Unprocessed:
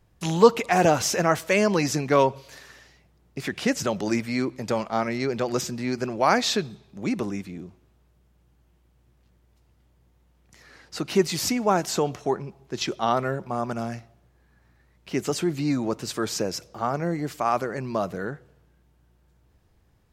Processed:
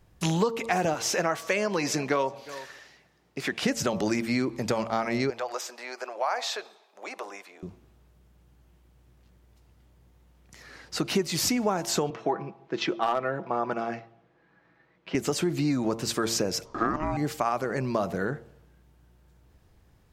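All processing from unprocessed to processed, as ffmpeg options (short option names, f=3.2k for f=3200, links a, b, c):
-filter_complex "[0:a]asettb=1/sr,asplit=3[a][b][c];[a]atrim=end=0.944[d];[b]atrim=start=0.94:end=3.63,asetpts=PTS-STARTPTS,afade=t=in:d=0.004:c=qsin,afade=t=out:st=2.686:d=0.004:c=qsin,highpass=f=350:p=1,highshelf=f=6.9k:g=-6,aecho=1:1:361:0.0668,atrim=end_sample=118629[e];[c]atrim=start=3.626[f];[d][e]acrossfade=d=0.004:c1=hsin:c2=qsin[g];[g][f]acrossfade=d=0.004:c1=qsin:c2=hsin,asettb=1/sr,asplit=3[h][i][j];[h]atrim=end=5.304[k];[i]atrim=start=5.3:end=7.63,asetpts=PTS-STARTPTS,afade=t=in:d=0.004:c=qsin,afade=t=out:st=2.326:d=0.004:c=qsin,highpass=f=640:w=0.5412,highpass=f=640:w=1.3066,tiltshelf=f=1.2k:g=6,acompressor=threshold=-39dB:ratio=1.5:attack=3.2:release=140:knee=1:detection=peak[l];[j]atrim=start=7.626[m];[k][l]acrossfade=d=0.004:c1=hsin:c2=qsin[n];[n][m]acrossfade=d=0.004:c1=qsin:c2=hsin,asettb=1/sr,asplit=3[o][p][q];[o]atrim=end=12.104[r];[p]atrim=start=12.1:end=15.15,asetpts=PTS-STARTPTS,afade=t=in:d=0.004:c=qsin,afade=t=out:st=3.046:d=0.004:c=qsin,highpass=230,lowpass=2.9k,aecho=1:1:6.1:0.45,atrim=end_sample=134505,volume=13.5dB,asoftclip=hard,volume=-13.5dB[s];[q]atrim=start=15.146[t];[r][s]acrossfade=d=0.004:c1=hsin:c2=qsin[u];[u][t]acrossfade=d=0.004:c1=qsin:c2=hsin,asettb=1/sr,asplit=3[v][w][x];[v]atrim=end=16.654[y];[w]atrim=start=16.65:end=17.17,asetpts=PTS-STARTPTS,afade=t=in:d=0.004:c=qsin,afade=t=out:st=0.516:d=0.004:c=qsin,lowpass=7.4k,equalizer=f=790:t=o:w=0.42:g=12.5,aeval=exprs='val(0)*sin(2*PI*460*n/s)':c=same[z];[x]atrim=start=17.166[aa];[y][z]acrossfade=d=0.004:c1=hsin:c2=qsin[ab];[ab][aa]acrossfade=d=0.004:c1=qsin:c2=hsin,bandreject=f=114.1:t=h:w=4,bandreject=f=228.2:t=h:w=4,bandreject=f=342.3:t=h:w=4,bandreject=f=456.4:t=h:w=4,bandreject=f=570.5:t=h:w=4,bandreject=f=684.6:t=h:w=4,bandreject=f=798.7:t=h:w=4,bandreject=f=912.8:t=h:w=4,bandreject=f=1.0269k:t=h:w=4,bandreject=f=1.141k:t=h:w=4,acompressor=threshold=-25dB:ratio=8,volume=3dB"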